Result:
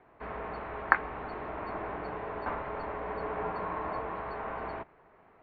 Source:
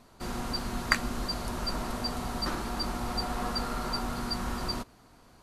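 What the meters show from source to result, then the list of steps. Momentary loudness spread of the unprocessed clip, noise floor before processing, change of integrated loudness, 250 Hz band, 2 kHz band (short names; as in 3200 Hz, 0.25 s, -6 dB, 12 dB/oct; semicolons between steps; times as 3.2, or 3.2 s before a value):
5 LU, -58 dBFS, -2.5 dB, -9.0 dB, +1.0 dB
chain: low shelf 480 Hz -11 dB; mistuned SSB -300 Hz 350–2500 Hz; gain +4 dB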